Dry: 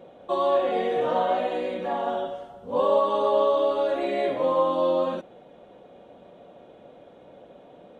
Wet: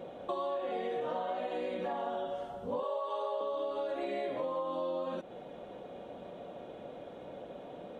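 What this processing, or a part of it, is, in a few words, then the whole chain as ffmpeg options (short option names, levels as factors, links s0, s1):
serial compression, peaks first: -filter_complex "[0:a]asettb=1/sr,asplit=3[s0][s1][s2];[s0]atrim=end=2.834[s3];[s1]atrim=start=2.83:end=3.41,asetpts=PTS-STARTPTS,afade=t=in:d=0.004:c=qsin,afade=t=out:st=0.576:d=0.004:c=qsin,highpass=f=430:w=0.5412,highpass=f=430:w=1.3066[s4];[s2]atrim=start=3.406[s5];[s3][s4]acrossfade=d=0.004:c1=hsin:c2=qsin[s6];[s6][s5]acrossfade=d=0.004:c1=qsin:c2=hsin,acompressor=threshold=0.0282:ratio=6,acompressor=threshold=0.00631:ratio=1.5,volume=1.41"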